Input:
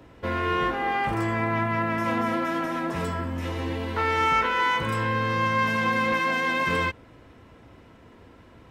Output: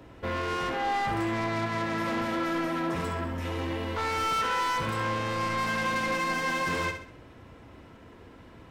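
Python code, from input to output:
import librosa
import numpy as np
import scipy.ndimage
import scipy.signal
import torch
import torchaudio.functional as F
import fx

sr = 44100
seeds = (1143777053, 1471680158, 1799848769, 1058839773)

y = 10.0 ** (-26.0 / 20.0) * np.tanh(x / 10.0 ** (-26.0 / 20.0))
y = fx.echo_feedback(y, sr, ms=66, feedback_pct=39, wet_db=-8.0)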